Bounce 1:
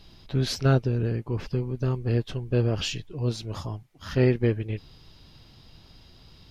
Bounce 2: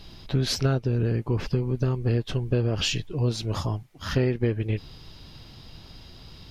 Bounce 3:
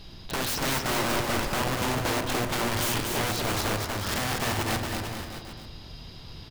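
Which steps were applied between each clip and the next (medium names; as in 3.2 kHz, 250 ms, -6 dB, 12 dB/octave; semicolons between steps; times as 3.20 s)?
compression 6:1, threshold -26 dBFS, peak gain reduction 10.5 dB; trim +6 dB
integer overflow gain 24 dB; bouncing-ball echo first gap 240 ms, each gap 0.85×, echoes 5; reverberation RT60 0.70 s, pre-delay 38 ms, DRR 9 dB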